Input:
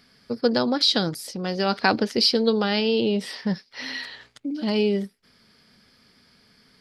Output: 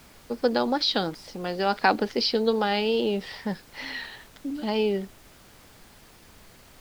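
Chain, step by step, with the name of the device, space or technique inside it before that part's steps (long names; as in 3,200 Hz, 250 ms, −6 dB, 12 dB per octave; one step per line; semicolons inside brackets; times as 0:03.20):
horn gramophone (band-pass filter 230–3,900 Hz; parametric band 830 Hz +6.5 dB 0.22 octaves; tape wow and flutter; pink noise bed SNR 24 dB)
level −1.5 dB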